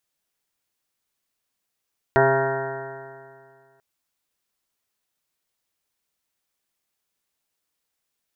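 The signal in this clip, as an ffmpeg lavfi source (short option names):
-f lavfi -i "aevalsrc='0.0708*pow(10,-3*t/2.14)*sin(2*PI*133.06*t)+0.0282*pow(10,-3*t/2.14)*sin(2*PI*266.5*t)+0.141*pow(10,-3*t/2.14)*sin(2*PI*400.7*t)+0.0282*pow(10,-3*t/2.14)*sin(2*PI*536.03*t)+0.141*pow(10,-3*t/2.14)*sin(2*PI*672.85*t)+0.0531*pow(10,-3*t/2.14)*sin(2*PI*811.53*t)+0.075*pow(10,-3*t/2.14)*sin(2*PI*952.42*t)+0.0211*pow(10,-3*t/2.14)*sin(2*PI*1095.87*t)+0.00891*pow(10,-3*t/2.14)*sin(2*PI*1242.2*t)+0.0631*pow(10,-3*t/2.14)*sin(2*PI*1391.74*t)+0.0531*pow(10,-3*t/2.14)*sin(2*PI*1544.8*t)+0.0211*pow(10,-3*t/2.14)*sin(2*PI*1701.67*t)+0.0531*pow(10,-3*t/2.14)*sin(2*PI*1862.63*t)':d=1.64:s=44100"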